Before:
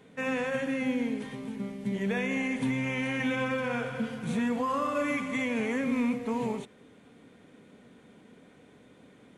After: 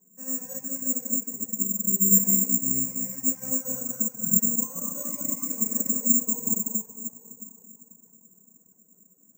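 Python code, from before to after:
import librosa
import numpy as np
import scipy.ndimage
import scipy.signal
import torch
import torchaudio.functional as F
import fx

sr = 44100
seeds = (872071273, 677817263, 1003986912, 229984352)

y = fx.rattle_buzz(x, sr, strikes_db=-39.0, level_db=-29.0)
y = scipy.signal.sosfilt(scipy.signal.butter(2, 110.0, 'highpass', fs=sr, output='sos'), y)
y = fx.peak_eq(y, sr, hz=190.0, db=14.5, octaves=0.77)
y = fx.rev_plate(y, sr, seeds[0], rt60_s=4.1, hf_ratio=0.6, predelay_ms=0, drr_db=-3.5)
y = fx.dereverb_blind(y, sr, rt60_s=0.67)
y = scipy.signal.sosfilt(scipy.signal.butter(2, 1100.0, 'lowpass', fs=sr, output='sos'), y)
y = (np.kron(y[::6], np.eye(6)[0]) * 6)[:len(y)]
y = fx.upward_expand(y, sr, threshold_db=-25.0, expansion=1.5)
y = y * librosa.db_to_amplitude(-11.0)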